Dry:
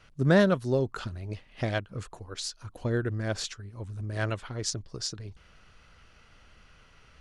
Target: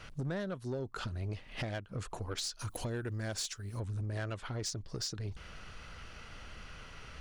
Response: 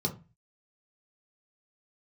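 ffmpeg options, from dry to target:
-filter_complex "[0:a]asettb=1/sr,asplit=3[link_01][link_02][link_03];[link_01]atrim=end=2.594[link_04];[link_02]atrim=start=2.59:end=3.8,asetpts=PTS-STARTPTS,afade=type=in:duration=0.004:curve=qsin,afade=type=out:start_time=1.206:duration=0.004:curve=qsin,aemphasis=mode=production:type=75kf[link_05];[link_03]atrim=start=3.796[link_06];[link_04][link_05]acrossfade=duration=0.004:curve1=hsin:curve2=qsin[link_07];[link_07][link_06]acrossfade=duration=0.004:curve1=qsin:curve2=hsin,acompressor=threshold=-41dB:ratio=8,asoftclip=type=tanh:threshold=-38dB,volume=8dB"

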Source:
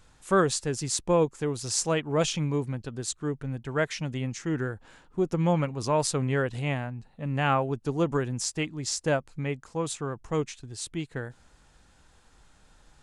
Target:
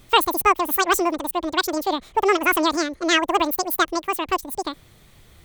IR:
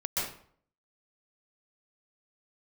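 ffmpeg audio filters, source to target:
-af "asetrate=105399,aresample=44100,volume=7dB"

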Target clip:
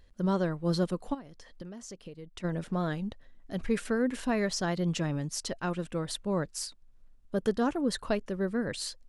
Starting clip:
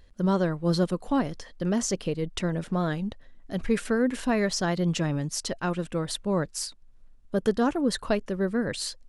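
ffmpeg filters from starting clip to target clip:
ffmpeg -i in.wav -filter_complex "[0:a]asplit=3[link_01][link_02][link_03];[link_01]afade=type=out:start_time=1.13:duration=0.02[link_04];[link_02]acompressor=threshold=-37dB:ratio=10,afade=type=in:start_time=1.13:duration=0.02,afade=type=out:start_time=2.43:duration=0.02[link_05];[link_03]afade=type=in:start_time=2.43:duration=0.02[link_06];[link_04][link_05][link_06]amix=inputs=3:normalize=0,volume=-4dB" out.wav

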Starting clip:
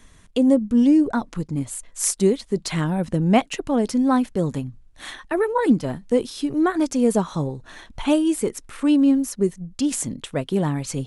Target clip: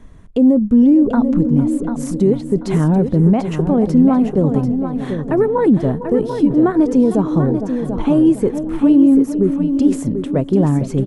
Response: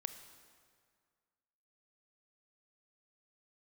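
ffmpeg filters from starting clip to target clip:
-filter_complex "[0:a]asplit=2[link_01][link_02];[link_02]adelay=455,lowpass=frequency=910:poles=1,volume=-13dB,asplit=2[link_03][link_04];[link_04]adelay=455,lowpass=frequency=910:poles=1,volume=0.51,asplit=2[link_05][link_06];[link_06]adelay=455,lowpass=frequency=910:poles=1,volume=0.51,asplit=2[link_07][link_08];[link_08]adelay=455,lowpass=frequency=910:poles=1,volume=0.51,asplit=2[link_09][link_10];[link_10]adelay=455,lowpass=frequency=910:poles=1,volume=0.51[link_11];[link_03][link_05][link_07][link_09][link_11]amix=inputs=5:normalize=0[link_12];[link_01][link_12]amix=inputs=2:normalize=0,alimiter=limit=-14.5dB:level=0:latency=1:release=39,tiltshelf=frequency=1500:gain=10,asplit=2[link_13][link_14];[link_14]aecho=0:1:740|1480|2220:0.398|0.0916|0.0211[link_15];[link_13][link_15]amix=inputs=2:normalize=0"

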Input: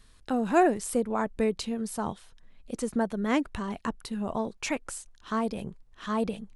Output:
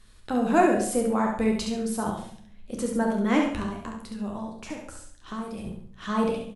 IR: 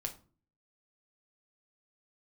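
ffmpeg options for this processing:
-filter_complex "[0:a]asettb=1/sr,asplit=3[link_01][link_02][link_03];[link_01]atrim=end=3.634[link_04];[link_02]atrim=start=3.63:end=5.65,asetpts=PTS-STARTPTS,afade=type=in:duration=0.004:curve=qsin,afade=type=out:start_time=2.016:duration=0.004:curve=qsin,acrossover=split=210|1100|8000[link_05][link_06][link_07][link_08];[link_05]acompressor=threshold=-44dB:ratio=4[link_09];[link_06]acompressor=threshold=-40dB:ratio=4[link_10];[link_07]acompressor=threshold=-49dB:ratio=4[link_11];[link_08]acompressor=threshold=-58dB:ratio=4[link_12];[link_09][link_10][link_11][link_12]amix=inputs=4:normalize=0[link_13];[link_03]atrim=start=5.646[link_14];[link_04][link_13]acrossfade=duration=0.004:curve1=hsin:curve2=qsin[link_15];[link_15][link_14]acrossfade=duration=0.004:curve1=qsin:curve2=hsin,aecho=1:1:68|136|204|272:0.562|0.169|0.0506|0.0152[link_16];[1:a]atrim=start_sample=2205,asetrate=27783,aresample=44100[link_17];[link_16][link_17]afir=irnorm=-1:irlink=0"

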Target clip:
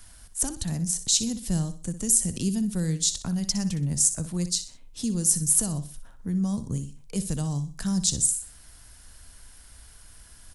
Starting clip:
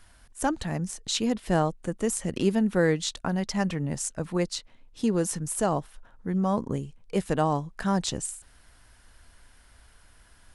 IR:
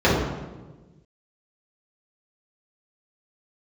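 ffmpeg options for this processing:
-filter_complex "[0:a]bass=frequency=250:gain=5,treble=frequency=4000:gain=12,acrossover=split=210|3900[link_01][link_02][link_03];[link_02]acompressor=threshold=-40dB:ratio=6[link_04];[link_01][link_04][link_03]amix=inputs=3:normalize=0,aecho=1:1:62|124|186:0.251|0.0854|0.029"

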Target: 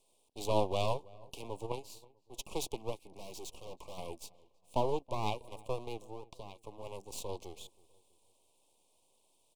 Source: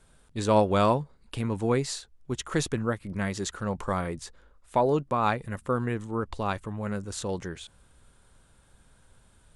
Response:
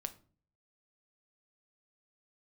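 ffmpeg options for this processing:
-filter_complex "[0:a]highpass=frequency=330:width=0.5412,highpass=frequency=330:width=1.3066,asplit=3[link_01][link_02][link_03];[link_01]afade=type=out:start_time=6.01:duration=0.02[link_04];[link_02]acompressor=threshold=-35dB:ratio=16,afade=type=in:start_time=6.01:duration=0.02,afade=type=out:start_time=6.62:duration=0.02[link_05];[link_03]afade=type=in:start_time=6.62:duration=0.02[link_06];[link_04][link_05][link_06]amix=inputs=3:normalize=0,aeval=exprs='max(val(0),0)':channel_layout=same,asplit=3[link_07][link_08][link_09];[link_07]afade=type=out:start_time=1.65:duration=0.02[link_10];[link_08]aeval=exprs='0.188*(cos(1*acos(clip(val(0)/0.188,-1,1)))-cos(1*PI/2))+0.0473*(cos(3*acos(clip(val(0)/0.188,-1,1)))-cos(3*PI/2))':channel_layout=same,afade=type=in:start_time=1.65:duration=0.02,afade=type=out:start_time=2.33:duration=0.02[link_11];[link_09]afade=type=in:start_time=2.33:duration=0.02[link_12];[link_10][link_11][link_12]amix=inputs=3:normalize=0,asplit=3[link_13][link_14][link_15];[link_13]afade=type=out:start_time=3.1:duration=0.02[link_16];[link_14]asoftclip=type=hard:threshold=-35.5dB,afade=type=in:start_time=3.1:duration=0.02,afade=type=out:start_time=3.97:duration=0.02[link_17];[link_15]afade=type=in:start_time=3.97:duration=0.02[link_18];[link_16][link_17][link_18]amix=inputs=3:normalize=0,asuperstop=centerf=1600:order=8:qfactor=1.1,asplit=2[link_19][link_20];[link_20]adelay=324,lowpass=frequency=1500:poles=1,volume=-22dB,asplit=2[link_21][link_22];[link_22]adelay=324,lowpass=frequency=1500:poles=1,volume=0.4,asplit=2[link_23][link_24];[link_24]adelay=324,lowpass=frequency=1500:poles=1,volume=0.4[link_25];[link_19][link_21][link_23][link_25]amix=inputs=4:normalize=0,volume=-2.5dB"

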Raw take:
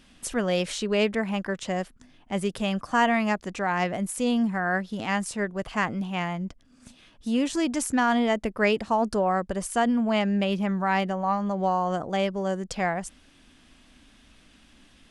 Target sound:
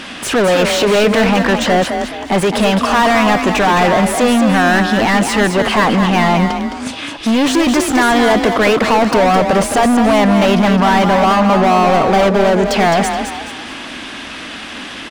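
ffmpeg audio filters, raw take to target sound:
ffmpeg -i in.wav -filter_complex "[0:a]asplit=2[link_01][link_02];[link_02]highpass=frequency=720:poles=1,volume=36dB,asoftclip=type=tanh:threshold=-9.5dB[link_03];[link_01][link_03]amix=inputs=2:normalize=0,lowpass=frequency=2100:poles=1,volume=-6dB,asplit=5[link_04][link_05][link_06][link_07][link_08];[link_05]adelay=213,afreqshift=34,volume=-6.5dB[link_09];[link_06]adelay=426,afreqshift=68,volume=-15.1dB[link_10];[link_07]adelay=639,afreqshift=102,volume=-23.8dB[link_11];[link_08]adelay=852,afreqshift=136,volume=-32.4dB[link_12];[link_04][link_09][link_10][link_11][link_12]amix=inputs=5:normalize=0,volume=4.5dB" out.wav

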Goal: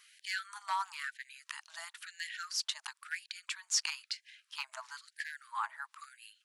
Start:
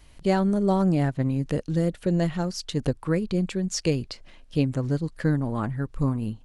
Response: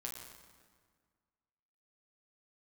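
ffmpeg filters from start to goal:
-af "volume=14dB,asoftclip=hard,volume=-14dB,asuperstop=centerf=730:order=4:qfactor=3.4,afftfilt=real='re*gte(b*sr/1024,630*pow(1600/630,0.5+0.5*sin(2*PI*1*pts/sr)))':imag='im*gte(b*sr/1024,630*pow(1600/630,0.5+0.5*sin(2*PI*1*pts/sr)))':win_size=1024:overlap=0.75"

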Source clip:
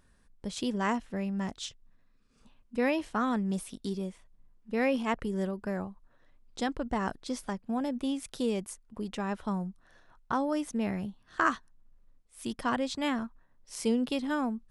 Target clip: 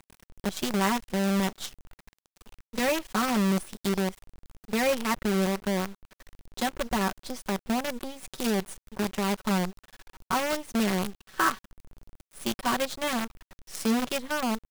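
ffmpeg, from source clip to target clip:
ffmpeg -i in.wav -filter_complex "[0:a]asplit=2[link_01][link_02];[link_02]acompressor=threshold=-44dB:ratio=4,volume=2.5dB[link_03];[link_01][link_03]amix=inputs=2:normalize=0,aecho=1:1:5.3:0.79,acrusher=bits=5:dc=4:mix=0:aa=0.000001,volume=-1.5dB" out.wav

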